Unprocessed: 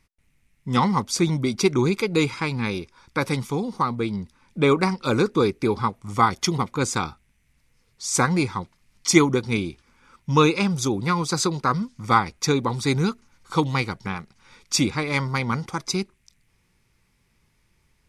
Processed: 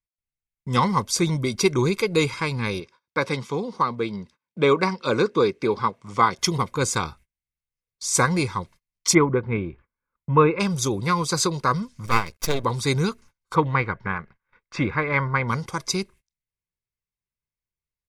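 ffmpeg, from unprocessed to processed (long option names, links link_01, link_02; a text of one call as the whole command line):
ffmpeg -i in.wav -filter_complex "[0:a]asettb=1/sr,asplit=3[link_01][link_02][link_03];[link_01]atrim=end=2.804[link_04];[link_02]atrim=start=2.8:end=6.39,asetpts=PTS-STARTPTS,afade=type=in:duration=0.004:curve=qsin,afade=type=out:start_time=3.586:duration=0.004:curve=qsin,highpass=160,lowpass=5500[link_05];[link_03]atrim=start=6.386[link_06];[link_04][link_05]acrossfade=duration=0.004:curve1=hsin:curve2=qsin[link_07];[link_07][link_06]acrossfade=duration=0.004:curve1=qsin:curve2=hsin,asplit=3[link_08][link_09][link_10];[link_08]afade=type=out:start_time=9.13:duration=0.02[link_11];[link_09]lowpass=frequency=2100:width=0.5412,lowpass=frequency=2100:width=1.3066,afade=type=in:start_time=9.13:duration=0.02,afade=type=out:start_time=10.59:duration=0.02[link_12];[link_10]afade=type=in:start_time=10.59:duration=0.02[link_13];[link_11][link_12][link_13]amix=inputs=3:normalize=0,asettb=1/sr,asplit=3[link_14][link_15][link_16];[link_14]atrim=end=12.064[link_17];[link_15]atrim=start=12.06:end=12.64,asetpts=PTS-STARTPTS,afade=type=in:duration=0.004:curve=qsin,afade=type=out:start_time=0.576:duration=0.004:curve=qsin,aeval=exprs='max(val(0),0)':channel_layout=same[link_18];[link_16]atrim=start=12.636[link_19];[link_17][link_18]acrossfade=duration=0.004:curve1=hsin:curve2=qsin[link_20];[link_20][link_19]acrossfade=duration=0.004:curve1=qsin:curve2=hsin,asplit=3[link_21][link_22][link_23];[link_21]afade=type=out:start_time=13.54:duration=0.02[link_24];[link_22]lowpass=frequency=1700:width_type=q:width=2,afade=type=in:start_time=13.54:duration=0.02,afade=type=out:start_time=15.47:duration=0.02[link_25];[link_23]afade=type=in:start_time=15.47:duration=0.02[link_26];[link_24][link_25][link_26]amix=inputs=3:normalize=0,agate=range=-31dB:threshold=-46dB:ratio=16:detection=peak,highshelf=frequency=11000:gain=6,aecho=1:1:1.9:0.37" out.wav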